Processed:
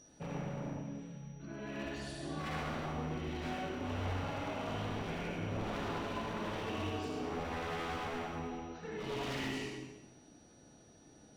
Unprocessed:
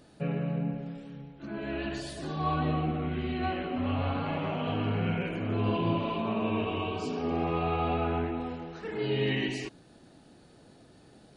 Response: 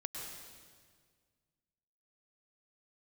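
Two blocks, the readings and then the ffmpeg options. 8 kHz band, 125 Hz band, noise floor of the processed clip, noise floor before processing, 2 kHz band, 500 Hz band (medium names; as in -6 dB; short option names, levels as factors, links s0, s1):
no reading, -9.5 dB, -61 dBFS, -57 dBFS, -4.5 dB, -8.0 dB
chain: -filter_complex "[0:a]aeval=exprs='0.0398*(abs(mod(val(0)/0.0398+3,4)-2)-1)':c=same,aeval=exprs='val(0)+0.00316*sin(2*PI*5800*n/s)':c=same[s0];[1:a]atrim=start_sample=2205,asetrate=79380,aresample=44100[s1];[s0][s1]afir=irnorm=-1:irlink=0"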